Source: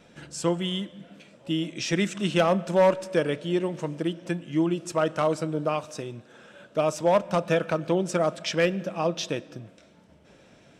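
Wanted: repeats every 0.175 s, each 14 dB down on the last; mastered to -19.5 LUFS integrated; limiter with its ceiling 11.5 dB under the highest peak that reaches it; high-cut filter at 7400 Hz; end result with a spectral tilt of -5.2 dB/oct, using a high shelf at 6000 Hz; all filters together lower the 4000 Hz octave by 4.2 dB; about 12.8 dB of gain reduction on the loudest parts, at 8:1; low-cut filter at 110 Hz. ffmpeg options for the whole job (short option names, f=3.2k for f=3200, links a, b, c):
-af "highpass=110,lowpass=7.4k,equalizer=f=4k:t=o:g=-4.5,highshelf=f=6k:g=-3.5,acompressor=threshold=-30dB:ratio=8,alimiter=level_in=6dB:limit=-24dB:level=0:latency=1,volume=-6dB,aecho=1:1:175|350:0.2|0.0399,volume=20.5dB"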